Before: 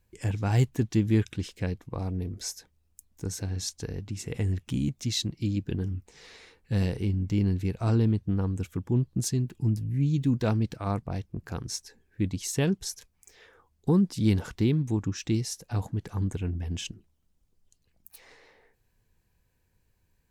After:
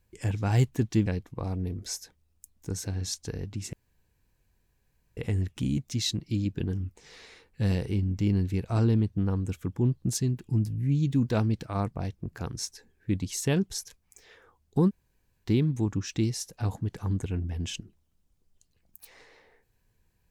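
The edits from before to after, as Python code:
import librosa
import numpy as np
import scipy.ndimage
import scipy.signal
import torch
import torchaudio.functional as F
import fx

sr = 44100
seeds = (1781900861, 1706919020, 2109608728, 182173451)

y = fx.edit(x, sr, fx.cut(start_s=1.06, length_s=0.55),
    fx.insert_room_tone(at_s=4.28, length_s=1.44),
    fx.room_tone_fill(start_s=14.0, length_s=0.56, crossfade_s=0.04), tone=tone)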